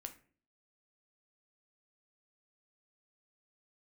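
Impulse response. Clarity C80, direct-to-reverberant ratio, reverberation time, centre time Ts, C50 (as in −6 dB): 18.5 dB, 6.0 dB, 0.45 s, 9 ms, 13.0 dB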